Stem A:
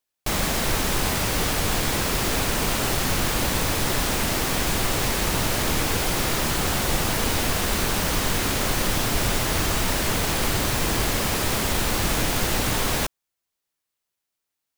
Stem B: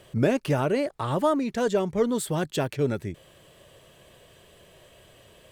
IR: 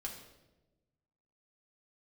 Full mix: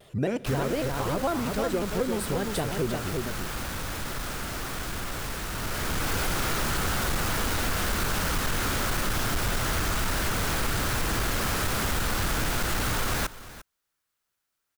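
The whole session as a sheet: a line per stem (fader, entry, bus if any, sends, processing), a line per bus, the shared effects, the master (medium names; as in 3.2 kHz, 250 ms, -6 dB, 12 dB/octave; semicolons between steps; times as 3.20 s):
+1.0 dB, 0.20 s, no send, echo send -19 dB, peaking EQ 1.4 kHz +7.5 dB 0.63 oct; saturation -23 dBFS, distortion -10 dB; bass shelf 140 Hz +5 dB; auto duck -9 dB, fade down 0.60 s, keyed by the second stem
-2.0 dB, 0.00 s, send -13.5 dB, echo send -4.5 dB, vibrato with a chosen wave square 5.5 Hz, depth 160 cents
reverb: on, RT60 1.1 s, pre-delay 3 ms
echo: delay 349 ms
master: compression 2:1, threshold -26 dBFS, peak gain reduction 5.5 dB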